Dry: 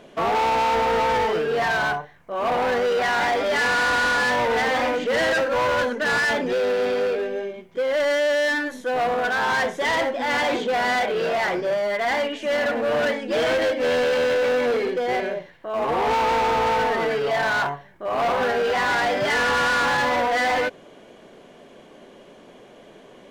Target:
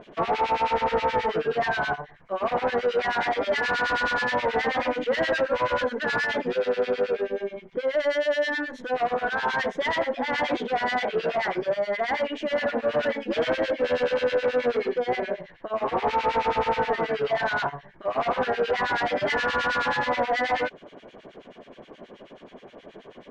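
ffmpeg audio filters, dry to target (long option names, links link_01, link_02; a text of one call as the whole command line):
ffmpeg -i in.wav -filter_complex "[0:a]lowpass=4200,asplit=2[link_01][link_02];[link_02]acompressor=threshold=-30dB:ratio=6,volume=3dB[link_03];[link_01][link_03]amix=inputs=2:normalize=0,acrossover=split=1600[link_04][link_05];[link_04]aeval=exprs='val(0)*(1-1/2+1/2*cos(2*PI*9.4*n/s))':channel_layout=same[link_06];[link_05]aeval=exprs='val(0)*(1-1/2-1/2*cos(2*PI*9.4*n/s))':channel_layout=same[link_07];[link_06][link_07]amix=inputs=2:normalize=0,volume=-2.5dB" out.wav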